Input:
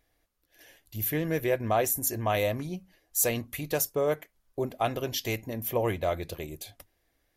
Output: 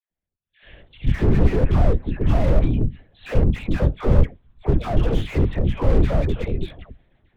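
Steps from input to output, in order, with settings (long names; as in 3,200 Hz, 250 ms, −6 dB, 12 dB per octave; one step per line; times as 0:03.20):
0:05.04–0:05.54: spike at every zero crossing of −28.5 dBFS
linear-prediction vocoder at 8 kHz whisper
automatic gain control gain up to 10 dB
noise gate with hold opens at −53 dBFS
low-shelf EQ 200 Hz +11.5 dB
all-pass dispersion lows, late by 105 ms, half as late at 1,000 Hz
slew-rate limiting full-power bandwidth 49 Hz
level −1.5 dB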